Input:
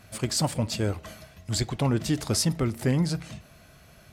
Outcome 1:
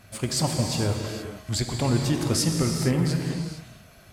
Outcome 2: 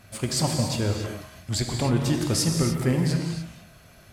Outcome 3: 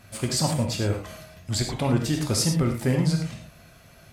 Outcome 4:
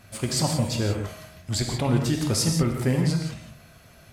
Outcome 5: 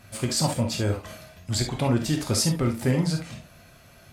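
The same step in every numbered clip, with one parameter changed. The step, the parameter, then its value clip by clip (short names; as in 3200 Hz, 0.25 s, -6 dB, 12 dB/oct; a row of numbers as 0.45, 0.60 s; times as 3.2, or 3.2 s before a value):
non-linear reverb, gate: 490, 320, 130, 200, 90 ms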